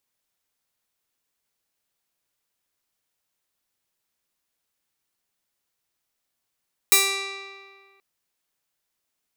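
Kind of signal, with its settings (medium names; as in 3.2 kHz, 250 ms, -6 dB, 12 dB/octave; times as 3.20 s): plucked string G4, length 1.08 s, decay 1.83 s, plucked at 0.26, bright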